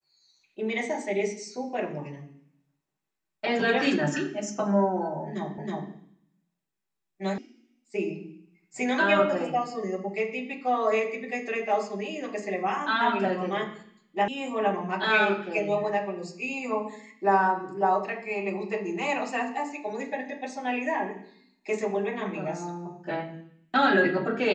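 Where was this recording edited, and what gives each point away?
0:05.58: the same again, the last 0.32 s
0:07.38: cut off before it has died away
0:14.28: cut off before it has died away

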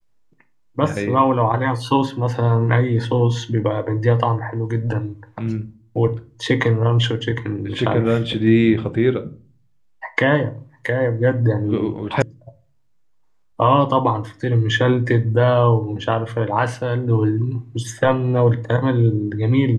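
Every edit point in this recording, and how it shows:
0:12.22: cut off before it has died away

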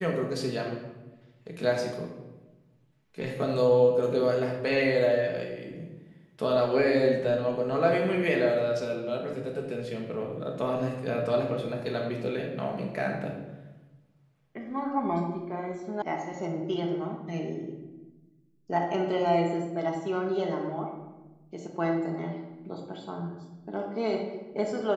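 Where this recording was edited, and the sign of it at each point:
0:16.02: cut off before it has died away

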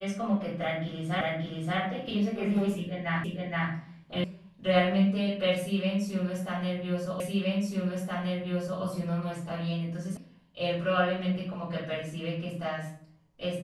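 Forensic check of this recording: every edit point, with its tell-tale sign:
0:01.21: the same again, the last 0.58 s
0:03.24: the same again, the last 0.47 s
0:04.24: cut off before it has died away
0:07.20: the same again, the last 1.62 s
0:10.17: cut off before it has died away

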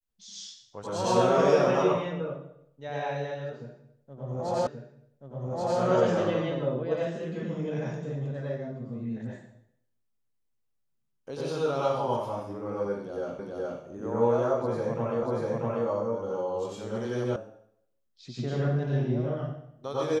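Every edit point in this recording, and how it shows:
0:04.67: the same again, the last 1.13 s
0:13.39: the same again, the last 0.42 s
0:15.23: the same again, the last 0.64 s
0:17.36: cut off before it has died away

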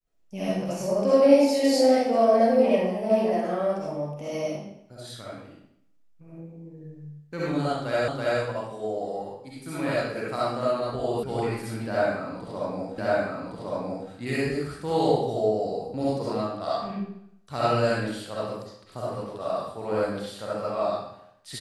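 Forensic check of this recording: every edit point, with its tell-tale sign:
0:08.08: the same again, the last 0.33 s
0:11.23: cut off before it has died away
0:12.98: the same again, the last 1.11 s

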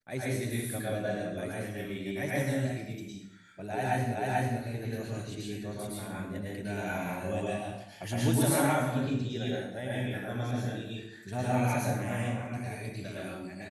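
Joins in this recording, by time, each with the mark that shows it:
0:04.15: the same again, the last 0.44 s

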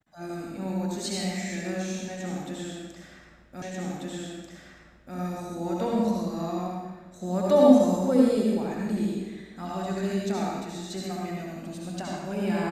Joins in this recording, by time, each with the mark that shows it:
0:03.62: the same again, the last 1.54 s

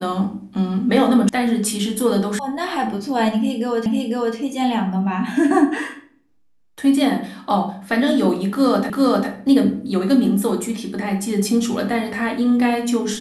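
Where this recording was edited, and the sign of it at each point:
0:01.29: cut off before it has died away
0:02.39: cut off before it has died away
0:03.86: the same again, the last 0.5 s
0:08.90: the same again, the last 0.4 s

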